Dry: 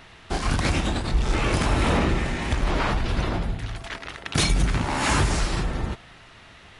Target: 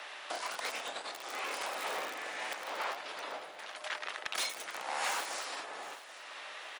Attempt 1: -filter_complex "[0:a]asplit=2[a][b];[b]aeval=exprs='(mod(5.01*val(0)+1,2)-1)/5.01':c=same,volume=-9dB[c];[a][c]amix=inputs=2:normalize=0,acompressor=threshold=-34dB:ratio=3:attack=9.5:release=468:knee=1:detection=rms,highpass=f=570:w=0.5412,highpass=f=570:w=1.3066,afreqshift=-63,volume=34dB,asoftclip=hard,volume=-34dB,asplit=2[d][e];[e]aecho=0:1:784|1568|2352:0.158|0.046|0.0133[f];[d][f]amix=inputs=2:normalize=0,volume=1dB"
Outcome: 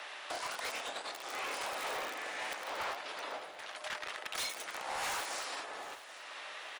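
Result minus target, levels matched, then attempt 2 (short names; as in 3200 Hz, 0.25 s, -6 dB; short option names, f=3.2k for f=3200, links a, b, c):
overloaded stage: distortion +18 dB
-filter_complex "[0:a]asplit=2[a][b];[b]aeval=exprs='(mod(5.01*val(0)+1,2)-1)/5.01':c=same,volume=-9dB[c];[a][c]amix=inputs=2:normalize=0,acompressor=threshold=-34dB:ratio=3:attack=9.5:release=468:knee=1:detection=rms,highpass=f=570:w=0.5412,highpass=f=570:w=1.3066,afreqshift=-63,volume=25dB,asoftclip=hard,volume=-25dB,asplit=2[d][e];[e]aecho=0:1:784|1568|2352:0.158|0.046|0.0133[f];[d][f]amix=inputs=2:normalize=0,volume=1dB"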